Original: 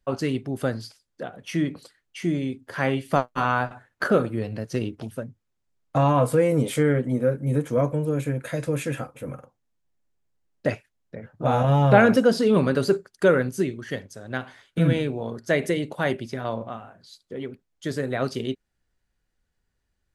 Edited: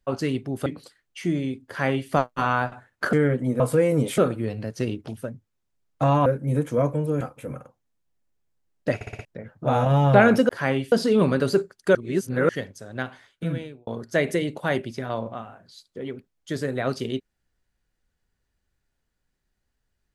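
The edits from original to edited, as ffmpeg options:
-filter_complex "[0:a]asplit=17[s0][s1][s2][s3][s4][s5][s6][s7][s8][s9][s10][s11][s12][s13][s14][s15][s16];[s0]atrim=end=0.662[s17];[s1]atrim=start=1.648:end=4.122[s18];[s2]atrim=start=6.778:end=7.252[s19];[s3]atrim=start=6.198:end=6.782[s20];[s4]atrim=start=4.118:end=6.202[s21];[s5]atrim=start=7.248:end=8.202[s22];[s6]atrim=start=8.988:end=10.792[s23];[s7]atrim=start=10.728:end=10.792[s24];[s8]atrim=start=10.728:end=10.792[s25];[s9]atrim=start=10.728:end=10.792[s26];[s10]atrim=start=10.728:end=10.792[s27];[s11]atrim=start=11.028:end=12.272[s28];[s12]atrim=start=2.658:end=3.092[s29];[s13]atrim=start=12.268:end=13.302[s30];[s14]atrim=start=13.298:end=13.842,asetpts=PTS-STARTPTS,areverse[s31];[s15]atrim=start=13.838:end=15.22,asetpts=PTS-STARTPTS,afade=t=out:st=0.502:d=0.88[s32];[s16]atrim=start=15.22,asetpts=PTS-STARTPTS,afade=t=in:d=0.004:c=hsin[s33];[s17][s18]acrossfade=d=0.004:c1=hsin:c2=hsin[s34];[s34][s19]acrossfade=d=0.004:c1=hsin:c2=hsin[s35];[s35][s20]acrossfade=d=0.004:c1=hsin:c2=hsin[s36];[s36][s21]acrossfade=d=0.004:c1=hsin:c2=hsin[s37];[s37][s22]acrossfade=d=0.004:c1=hsin:c2=hsin[s38];[s38][s23]acrossfade=d=0.004:c1=hsin:c2=hsin[s39];[s39][s24]acrossfade=d=0.004:c1=hsin:c2=hsin[s40];[s40][s25]acrossfade=d=0.004:c1=hsin:c2=hsin[s41];[s41][s26]acrossfade=d=0.004:c1=hsin:c2=hsin[s42];[s42][s27]acrossfade=d=0.004:c1=hsin:c2=hsin[s43];[s43][s28]acrossfade=d=0.004:c1=hsin:c2=hsin[s44];[s44][s29]acrossfade=d=0.004:c1=hsin:c2=hsin[s45];[s45][s30]acrossfade=d=0.004:c1=hsin:c2=hsin[s46];[s46][s31]acrossfade=d=0.004:c1=hsin:c2=hsin[s47];[s32][s33]concat=n=2:v=0:a=1[s48];[s47][s48]acrossfade=d=0.004:c1=hsin:c2=hsin"

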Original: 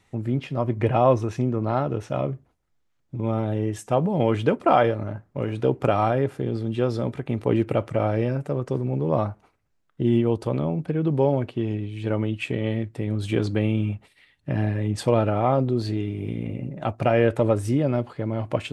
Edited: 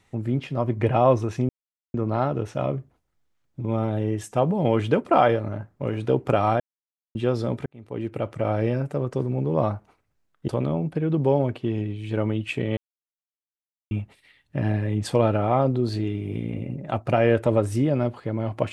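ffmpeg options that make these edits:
-filter_complex "[0:a]asplit=8[s0][s1][s2][s3][s4][s5][s6][s7];[s0]atrim=end=1.49,asetpts=PTS-STARTPTS,afade=t=out:st=1.486:d=0.004:c=hsin,apad=pad_dur=0.45[s8];[s1]atrim=start=1.49:end=6.15,asetpts=PTS-STARTPTS,afade=t=in:d=0.004:c=hsin,afade=t=out:st=4.656:d=0.004:c=hsin[s9];[s2]atrim=start=6.15:end=6.7,asetpts=PTS-STARTPTS,volume=0[s10];[s3]atrim=start=6.7:end=7.21,asetpts=PTS-STARTPTS,afade=t=in:d=0.004:c=hsin,afade=t=out:st=0.506:d=0.004:c=hsin[s11];[s4]atrim=start=7.21:end=10.032,asetpts=PTS-STARTPTS,afade=t=in:d=0.97[s12];[s5]atrim=start=10.408:end=12.7,asetpts=PTS-STARTPTS,afade=t=out:st=2.288:d=0.004:c=hsin[s13];[s6]atrim=start=12.7:end=13.84,asetpts=PTS-STARTPTS,volume=0[s14];[s7]atrim=start=13.84,asetpts=PTS-STARTPTS,afade=t=in:d=0.004:c=hsin[s15];[s8][s9][s10][s11][s12]concat=n=5:v=0:a=1[s16];[s13][s14][s15]concat=n=3:v=0:a=1[s17];[s16][s17]acrossfade=d=0.004:c1=hsin:c2=hsin"

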